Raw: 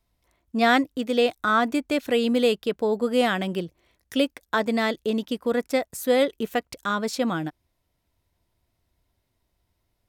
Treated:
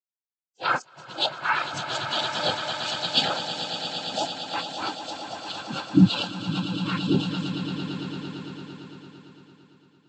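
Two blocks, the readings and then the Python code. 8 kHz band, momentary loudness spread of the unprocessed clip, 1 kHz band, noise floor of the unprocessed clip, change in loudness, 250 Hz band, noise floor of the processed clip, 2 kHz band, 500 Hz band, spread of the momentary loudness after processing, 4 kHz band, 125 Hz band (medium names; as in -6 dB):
-0.5 dB, 8 LU, -2.0 dB, -75 dBFS, -2.5 dB, -1.5 dB, under -85 dBFS, -3.0 dB, -11.0 dB, 13 LU, +5.5 dB, +10.5 dB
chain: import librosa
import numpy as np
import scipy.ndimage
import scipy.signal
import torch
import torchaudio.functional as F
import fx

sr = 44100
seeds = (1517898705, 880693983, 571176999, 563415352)

y = fx.octave_mirror(x, sr, pivot_hz=1400.0)
y = fx.quant_dither(y, sr, seeds[0], bits=6, dither='none')
y = fx.noise_vocoder(y, sr, seeds[1], bands=8)
y = fx.echo_swell(y, sr, ms=113, loudest=8, wet_db=-7.0)
y = fx.spectral_expand(y, sr, expansion=2.5)
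y = y * 10.0 ** (2.0 / 20.0)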